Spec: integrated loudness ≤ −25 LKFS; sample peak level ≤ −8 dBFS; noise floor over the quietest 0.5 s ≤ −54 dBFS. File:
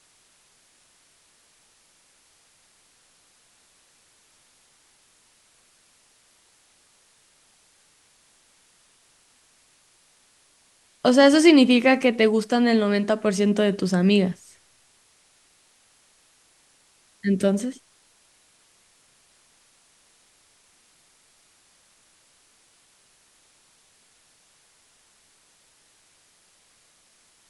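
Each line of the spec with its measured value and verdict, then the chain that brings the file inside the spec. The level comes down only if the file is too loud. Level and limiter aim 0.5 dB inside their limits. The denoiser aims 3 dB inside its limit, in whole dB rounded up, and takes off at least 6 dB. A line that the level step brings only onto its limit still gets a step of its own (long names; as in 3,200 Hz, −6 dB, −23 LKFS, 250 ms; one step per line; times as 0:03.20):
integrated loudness −19.5 LKFS: out of spec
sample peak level −3.5 dBFS: out of spec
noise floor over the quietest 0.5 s −61 dBFS: in spec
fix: level −6 dB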